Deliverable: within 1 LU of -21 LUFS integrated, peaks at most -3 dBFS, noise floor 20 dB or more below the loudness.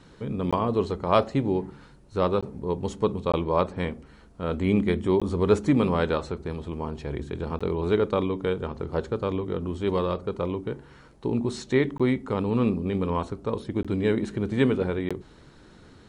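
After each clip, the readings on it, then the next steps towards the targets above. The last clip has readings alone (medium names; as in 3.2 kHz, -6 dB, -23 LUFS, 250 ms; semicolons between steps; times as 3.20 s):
dropouts 8; longest dropout 16 ms; loudness -26.5 LUFS; peak level -6.0 dBFS; loudness target -21.0 LUFS
-> interpolate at 0.51/2.41/3.32/5.20/7.59/11.98/13.83/15.09 s, 16 ms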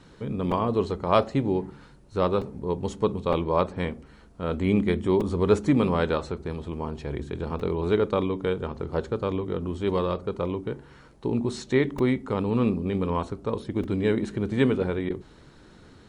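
dropouts 0; loudness -26.5 LUFS; peak level -6.0 dBFS; loudness target -21.0 LUFS
-> trim +5.5 dB; peak limiter -3 dBFS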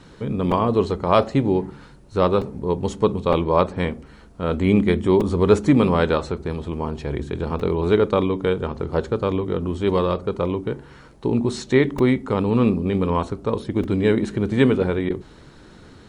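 loudness -21.5 LUFS; peak level -3.0 dBFS; noise floor -47 dBFS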